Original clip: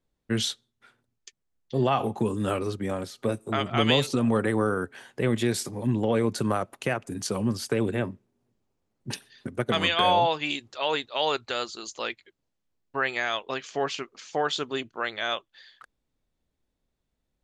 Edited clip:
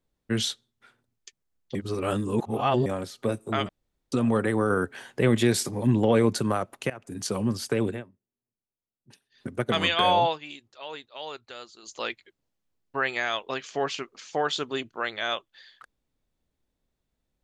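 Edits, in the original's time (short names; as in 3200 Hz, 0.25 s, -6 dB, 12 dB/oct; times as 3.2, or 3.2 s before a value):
1.75–2.86 reverse
3.69–4.12 room tone
4.7–6.38 gain +3.5 dB
6.9–7.24 fade in, from -19 dB
7.87–9.47 dip -21 dB, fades 0.17 s
10.26–11.97 dip -12 dB, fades 0.15 s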